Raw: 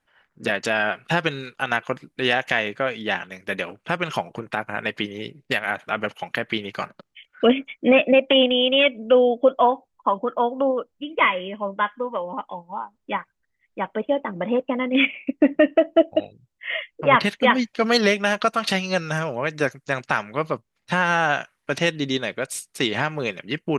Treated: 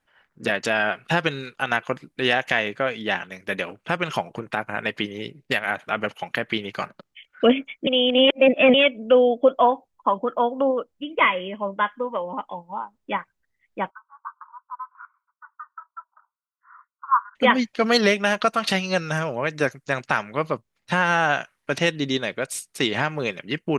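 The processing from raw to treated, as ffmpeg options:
-filter_complex "[0:a]asplit=3[a][b][c];[a]afade=t=out:st=13.89:d=0.02[d];[b]asuperpass=centerf=1200:order=12:qfactor=2.2,afade=t=in:st=13.89:d=0.02,afade=t=out:st=17.35:d=0.02[e];[c]afade=t=in:st=17.35:d=0.02[f];[d][e][f]amix=inputs=3:normalize=0,asplit=3[g][h][i];[g]atrim=end=7.872[j];[h]atrim=start=7.868:end=8.742,asetpts=PTS-STARTPTS,areverse[k];[i]atrim=start=8.738[l];[j][k]acrossfade=d=0.004:c1=hsin:c2=hsin[m];[m][l]acrossfade=d=0.004:c1=hsin:c2=hsin"

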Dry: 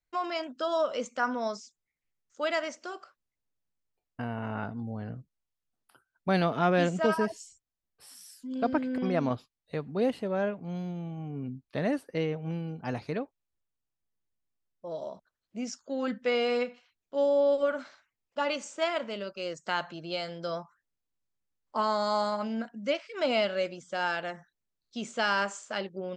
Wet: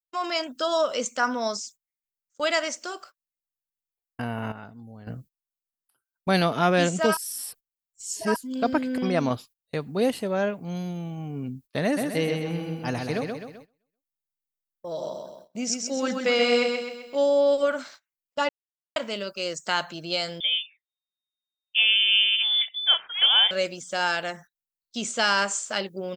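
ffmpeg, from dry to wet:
-filter_complex "[0:a]asplit=3[a][b][c];[a]afade=t=out:st=11.96:d=0.02[d];[b]aecho=1:1:129|258|387|516|645|774:0.596|0.28|0.132|0.0618|0.0291|0.0137,afade=t=in:st=11.96:d=0.02,afade=t=out:st=17.17:d=0.02[e];[c]afade=t=in:st=17.17:d=0.02[f];[d][e][f]amix=inputs=3:normalize=0,asettb=1/sr,asplit=3[g][h][i];[g]atrim=end=20.404[j];[h]atrim=start=20.4:end=23.51,asetpts=PTS-STARTPTS,afade=t=in:d=0.004:c=qsin,afade=t=out:st=3.106:d=0.004:c=qsin,lowpass=f=3.1k:t=q:w=0.5098,lowpass=f=3.1k:t=q:w=0.6013,lowpass=f=3.1k:t=q:w=0.9,lowpass=f=3.1k:t=q:w=2.563,afreqshift=-3700[k];[i]atrim=start=23.506[l];[j][k]acrossfade=d=0.004:c1=hsin:c2=qsin[m];[m][l]acrossfade=d=0.004:c1=qsin:c2=hsin,asplit=7[n][o][p][q][r][s][t];[n]atrim=end=4.522[u];[o]atrim=start=4.518:end=5.072,asetpts=PTS-STARTPTS,volume=-11.5dB[v];[p]atrim=start=5.068:end=7.172[w];[q]atrim=start=7.168:end=8.362,asetpts=PTS-STARTPTS,areverse[x];[r]atrim=start=8.358:end=18.49,asetpts=PTS-STARTPTS,afade=t=out:st=10.128:d=0.004:c=hsin[y];[s]atrim=start=18.49:end=18.96,asetpts=PTS-STARTPTS,volume=0[z];[t]atrim=start=18.96,asetpts=PTS-STARTPTS,afade=t=in:d=0.004:c=hsin[aa];[u][v]acrossfade=d=0.004:c1=hsin:c2=hsin[ab];[ab][w]acrossfade=d=0.004:c1=hsin:c2=hsin[ac];[ac][x]acrossfade=d=0.004:c1=hsin:c2=hsin[ad];[y][z][aa]concat=n=3:v=0:a=1[ae];[ad][ae]acrossfade=d=0.004:c1=hsin:c2=hsin,aemphasis=mode=production:type=75fm,agate=range=-21dB:threshold=-51dB:ratio=16:detection=peak,dynaudnorm=f=110:g=3:m=9dB,volume=-4.5dB"

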